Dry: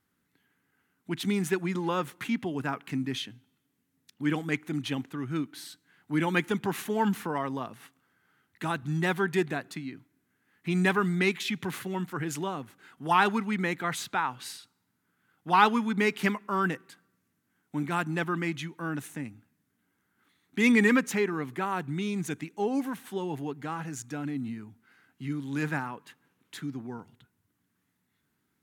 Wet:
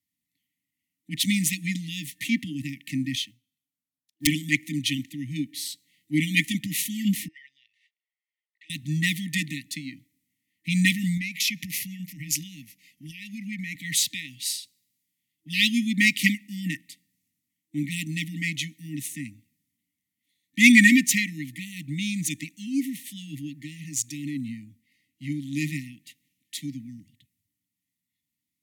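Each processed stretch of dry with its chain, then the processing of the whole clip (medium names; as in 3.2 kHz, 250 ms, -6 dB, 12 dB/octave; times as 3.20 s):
3.15–4.27 s: integer overflow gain 21.5 dB + short-mantissa float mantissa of 4-bit + upward expansion, over -54 dBFS
7.28–8.70 s: inverse Chebyshev high-pass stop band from 600 Hz + tape spacing loss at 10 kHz 36 dB
11.17–13.75 s: rippled EQ curve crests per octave 0.82, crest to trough 7 dB + compression 8:1, threshold -31 dBFS
whole clip: FFT band-reject 320–1800 Hz; treble shelf 2.2 kHz +10 dB; three bands expanded up and down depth 40%; trim +2.5 dB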